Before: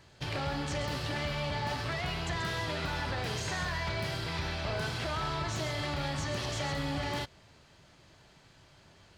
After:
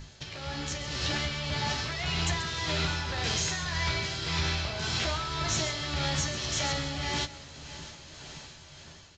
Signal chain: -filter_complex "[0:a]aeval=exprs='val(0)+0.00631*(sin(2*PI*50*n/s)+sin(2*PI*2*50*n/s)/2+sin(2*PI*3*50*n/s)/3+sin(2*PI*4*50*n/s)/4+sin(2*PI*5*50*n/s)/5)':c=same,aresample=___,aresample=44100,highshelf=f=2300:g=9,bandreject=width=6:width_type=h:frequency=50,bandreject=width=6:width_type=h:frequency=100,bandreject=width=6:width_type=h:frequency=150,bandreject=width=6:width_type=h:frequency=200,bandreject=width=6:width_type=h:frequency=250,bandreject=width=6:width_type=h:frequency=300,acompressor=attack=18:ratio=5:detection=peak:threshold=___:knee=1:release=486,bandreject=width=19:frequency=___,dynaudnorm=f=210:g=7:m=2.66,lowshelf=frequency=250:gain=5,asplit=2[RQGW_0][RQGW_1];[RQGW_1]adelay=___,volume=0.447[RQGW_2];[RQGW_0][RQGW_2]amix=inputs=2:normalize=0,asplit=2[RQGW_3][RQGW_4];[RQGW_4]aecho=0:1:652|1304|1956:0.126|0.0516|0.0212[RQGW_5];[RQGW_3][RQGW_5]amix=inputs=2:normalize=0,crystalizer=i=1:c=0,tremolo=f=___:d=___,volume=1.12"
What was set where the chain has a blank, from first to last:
16000, 0.0112, 4700, 13, 1.8, 0.44